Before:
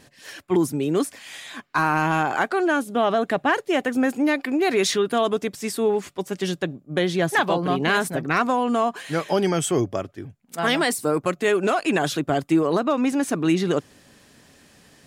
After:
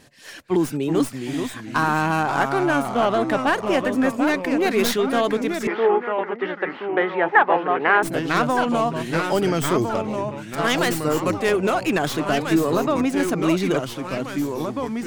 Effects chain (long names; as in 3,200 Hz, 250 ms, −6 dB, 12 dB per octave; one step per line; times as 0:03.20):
stylus tracing distortion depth 0.095 ms
delay with pitch and tempo change per echo 317 ms, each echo −2 semitones, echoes 3, each echo −6 dB
0:05.67–0:08.03: loudspeaker in its box 370–2,500 Hz, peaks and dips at 450 Hz +5 dB, 850 Hz +9 dB, 1,300 Hz +5 dB, 1,900 Hz +6 dB